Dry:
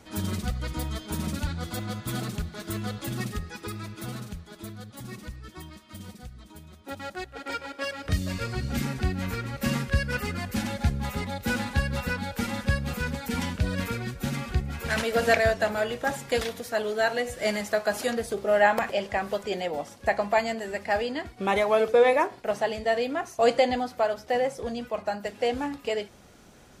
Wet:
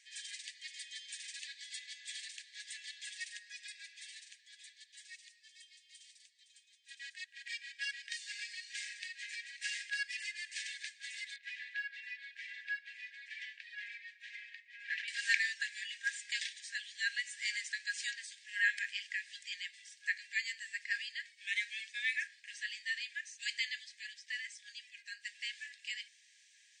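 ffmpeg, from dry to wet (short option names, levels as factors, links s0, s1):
-filter_complex "[0:a]asettb=1/sr,asplit=3[s0][s1][s2];[s0]atrim=end=5.164[s3];[s1]atrim=start=5.16:end=6.94,asetpts=PTS-STARTPTS,afade=t=in:d=0.004:c=qsin,afade=t=out:st=1.776:d=0.004:c=qsin,equalizer=f=1400:w=0.97:g=-8[s4];[s2]atrim=start=6.936[s5];[s3][s4]acrossfade=d=0.004:c1=hsin:c2=qsin[s6];[s6][s5]acrossfade=d=0.004:c1=qsin:c2=hsin,asettb=1/sr,asplit=3[s7][s8][s9];[s7]atrim=end=11.364[s10];[s8]atrim=start=11.36:end=15.08,asetpts=PTS-STARTPTS,afade=t=in:d=0.004:c=qsin,afade=t=out:st=3.716:d=0.004:c=qsin,lowpass=2200[s11];[s9]atrim=start=15.076[s12];[s10][s11]acrossfade=d=0.004:c1=hsin:c2=qsin[s13];[s13][s12]acrossfade=d=0.004:c1=qsin:c2=hsin,afftfilt=real='re*between(b*sr/4096,1600,9200)':imag='im*between(b*sr/4096,1600,9200)':win_size=4096:overlap=0.75,volume=0.631"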